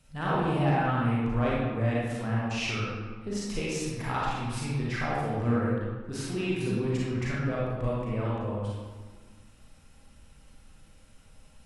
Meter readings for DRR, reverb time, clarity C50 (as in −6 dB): −6.5 dB, 1.5 s, −3.5 dB